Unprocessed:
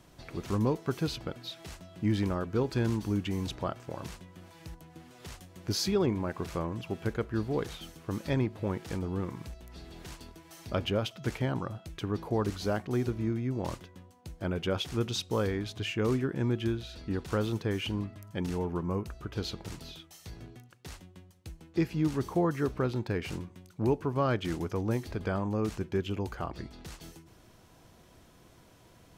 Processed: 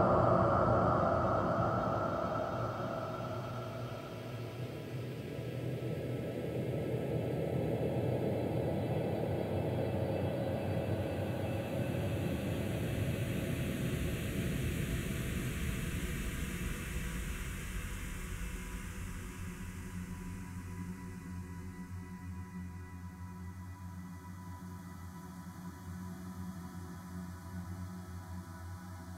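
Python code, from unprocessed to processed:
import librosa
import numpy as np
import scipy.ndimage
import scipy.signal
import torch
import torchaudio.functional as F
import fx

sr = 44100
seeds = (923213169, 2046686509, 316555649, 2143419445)

y = fx.env_phaser(x, sr, low_hz=340.0, high_hz=3600.0, full_db=-28.0)
y = fx.paulstretch(y, sr, seeds[0], factor=39.0, window_s=0.25, from_s=3.7)
y = F.gain(torch.from_numpy(y), 6.5).numpy()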